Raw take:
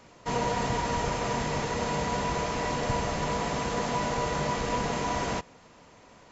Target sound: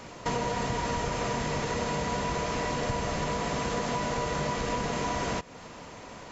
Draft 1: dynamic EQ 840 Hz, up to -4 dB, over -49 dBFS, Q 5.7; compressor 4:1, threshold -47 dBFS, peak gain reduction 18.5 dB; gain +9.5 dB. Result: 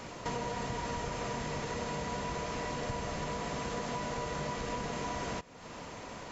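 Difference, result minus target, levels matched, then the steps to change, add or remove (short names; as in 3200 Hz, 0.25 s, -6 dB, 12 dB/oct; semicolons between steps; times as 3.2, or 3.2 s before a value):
compressor: peak gain reduction +6.5 dB
change: compressor 4:1, threshold -38.5 dBFS, peak gain reduction 12 dB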